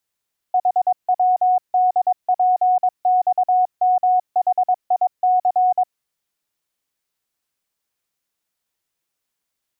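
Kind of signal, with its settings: Morse "HWDPXMHIC" 22 wpm 734 Hz -12.5 dBFS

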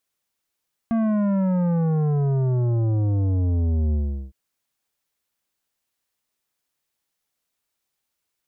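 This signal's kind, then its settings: sub drop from 230 Hz, over 3.41 s, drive 11 dB, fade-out 0.39 s, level -19.5 dB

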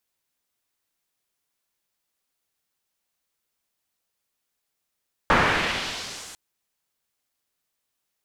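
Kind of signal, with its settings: swept filtered noise white, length 1.05 s lowpass, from 1300 Hz, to 8700 Hz, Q 1.2, exponential, gain ramp -33 dB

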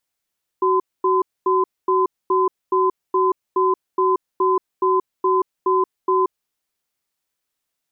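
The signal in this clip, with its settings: cadence 374 Hz, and 1020 Hz, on 0.18 s, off 0.24 s, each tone -17 dBFS 5.78 s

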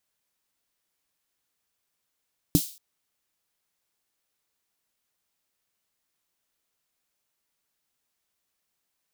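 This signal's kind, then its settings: snare drum length 0.23 s, tones 170 Hz, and 290 Hz, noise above 3600 Hz, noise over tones -10.5 dB, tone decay 0.08 s, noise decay 0.42 s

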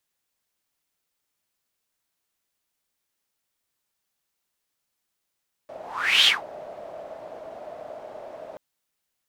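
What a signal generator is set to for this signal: whoosh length 2.88 s, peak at 0.57, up 0.48 s, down 0.18 s, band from 630 Hz, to 3300 Hz, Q 7.5, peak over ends 23.5 dB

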